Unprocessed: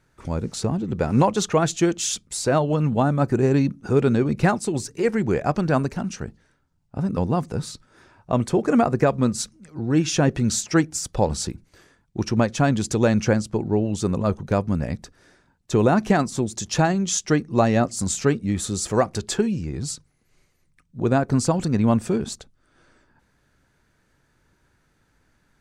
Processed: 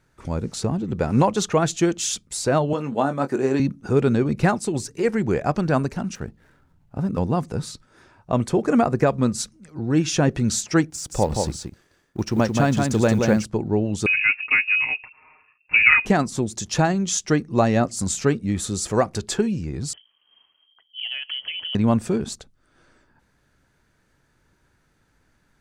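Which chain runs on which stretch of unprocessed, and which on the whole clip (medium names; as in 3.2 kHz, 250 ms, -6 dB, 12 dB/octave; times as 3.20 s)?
2.73–3.60 s: high-pass 270 Hz + doubling 22 ms -9 dB
6.15–7.19 s: median filter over 9 samples + upward compressor, threshold -46 dBFS
10.90–13.45 s: companding laws mixed up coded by A + de-esser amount 50% + delay 176 ms -4 dB
14.06–16.06 s: comb 6.2 ms, depth 87% + frequency inversion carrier 2.7 kHz
19.93–21.75 s: frequency inversion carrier 3.2 kHz + high-pass 110 Hz 6 dB/octave + compression 4:1, threshold -28 dBFS
whole clip: none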